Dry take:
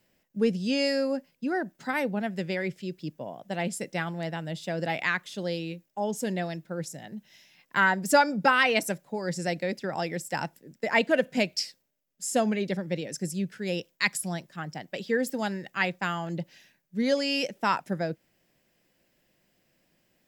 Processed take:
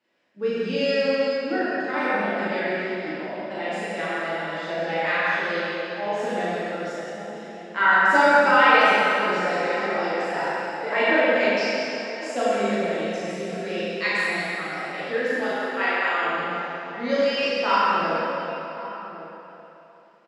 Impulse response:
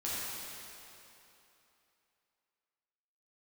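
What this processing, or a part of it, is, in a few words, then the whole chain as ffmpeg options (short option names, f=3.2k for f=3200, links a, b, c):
station announcement: -filter_complex "[0:a]asettb=1/sr,asplit=3[a][b][c];[a]atrim=end=15.374[d];[b]atrim=start=15.37:end=16.23,asetpts=PTS-STARTPTS,afade=t=in:d=0.004:c=qsin,afade=t=out:st=0.856:d=0.004:c=qsin,highpass=f=350:w=0.5412,highpass=f=350:w=1.3066[e];[c]atrim=start=16.226[f];[d][e]acrossfade=d=0.004:c1=hsin:c2=qsin[g];[g][f]acrossfade=d=0.004:c1=qsin:c2=hsin,highpass=340,lowpass=3.6k,equalizer=f=1.3k:t=o:w=0.21:g=4,asplit=2[h][i];[i]adelay=1108,volume=-14dB,highshelf=f=4k:g=-24.9[j];[h][j]amix=inputs=2:normalize=0,aecho=1:1:37.9|177.8:0.794|0.355[k];[1:a]atrim=start_sample=2205[l];[k][l]afir=irnorm=-1:irlink=0"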